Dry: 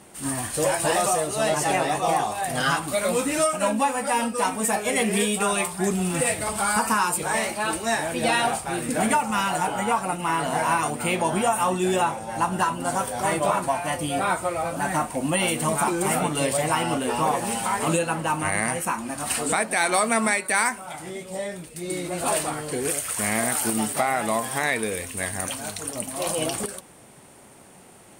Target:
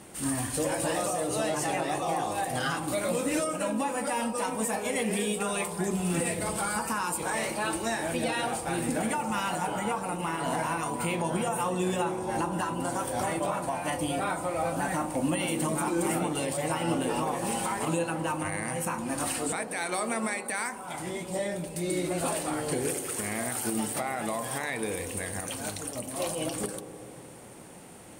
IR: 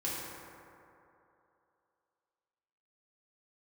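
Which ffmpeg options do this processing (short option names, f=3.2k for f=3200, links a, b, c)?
-filter_complex "[0:a]alimiter=limit=-20.5dB:level=0:latency=1:release=326,asplit=2[a][b];[b]lowpass=1k[c];[1:a]atrim=start_sample=2205,lowpass=1.1k[d];[c][d]afir=irnorm=-1:irlink=0,volume=-9.5dB[e];[a][e]amix=inputs=2:normalize=0"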